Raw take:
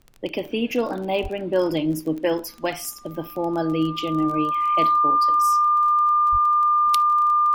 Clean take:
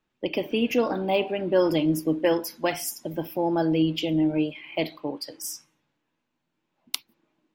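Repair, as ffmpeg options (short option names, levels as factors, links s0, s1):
-filter_complex "[0:a]adeclick=t=4,bandreject=f=1200:w=30,asplit=3[s0][s1][s2];[s0]afade=t=out:st=1.22:d=0.02[s3];[s1]highpass=f=140:w=0.5412,highpass=f=140:w=1.3066,afade=t=in:st=1.22:d=0.02,afade=t=out:st=1.34:d=0.02[s4];[s2]afade=t=in:st=1.34:d=0.02[s5];[s3][s4][s5]amix=inputs=3:normalize=0,asplit=3[s6][s7][s8];[s6]afade=t=out:st=6.31:d=0.02[s9];[s7]highpass=f=140:w=0.5412,highpass=f=140:w=1.3066,afade=t=in:st=6.31:d=0.02,afade=t=out:st=6.43:d=0.02[s10];[s8]afade=t=in:st=6.43:d=0.02[s11];[s9][s10][s11]amix=inputs=3:normalize=0,agate=range=0.0891:threshold=0.0316"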